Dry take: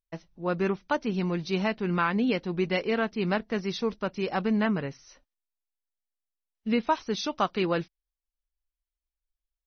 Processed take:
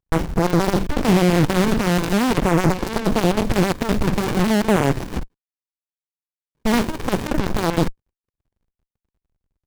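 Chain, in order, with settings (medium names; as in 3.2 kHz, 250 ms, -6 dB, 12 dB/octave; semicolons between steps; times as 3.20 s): companding laws mixed up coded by mu; in parallel at 0 dB: fuzz box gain 52 dB, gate -57 dBFS; on the sum: LFO notch saw down 0.43 Hz 350–5100 Hz; sliding maximum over 65 samples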